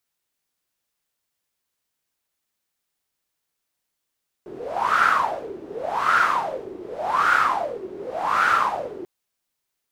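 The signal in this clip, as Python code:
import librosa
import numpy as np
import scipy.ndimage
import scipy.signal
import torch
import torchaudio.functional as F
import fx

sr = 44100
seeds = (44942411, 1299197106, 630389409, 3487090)

y = fx.wind(sr, seeds[0], length_s=4.59, low_hz=360.0, high_hz=1400.0, q=9.3, gusts=4, swing_db=18.0)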